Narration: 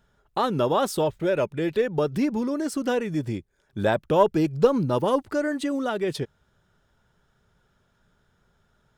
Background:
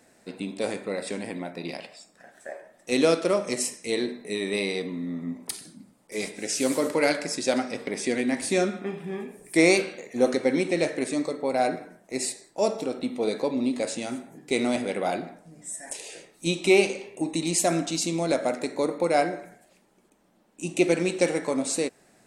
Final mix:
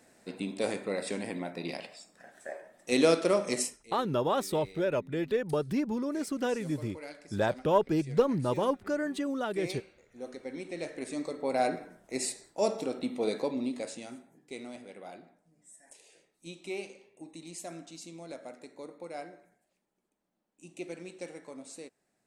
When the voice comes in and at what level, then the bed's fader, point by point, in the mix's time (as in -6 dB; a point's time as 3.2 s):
3.55 s, -6.0 dB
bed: 3.61 s -2.5 dB
3.86 s -22 dB
10.11 s -22 dB
11.53 s -4 dB
13.36 s -4 dB
14.71 s -19 dB